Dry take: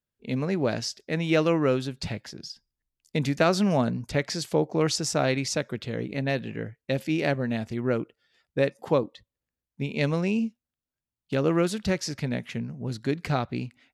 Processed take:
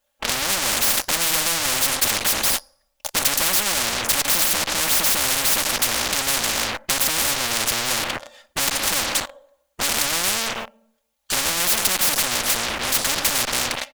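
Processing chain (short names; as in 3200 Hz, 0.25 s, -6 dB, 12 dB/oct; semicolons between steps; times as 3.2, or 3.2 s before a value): minimum comb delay 3.4 ms; comb 3.7 ms, depth 58%; plate-style reverb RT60 0.71 s, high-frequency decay 0.75×, DRR 16.5 dB; in parallel at -9.5 dB: fuzz box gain 48 dB, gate -52 dBFS; on the sum: resonant low shelf 450 Hz -10 dB, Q 3; spectral compressor 10:1; gain +1.5 dB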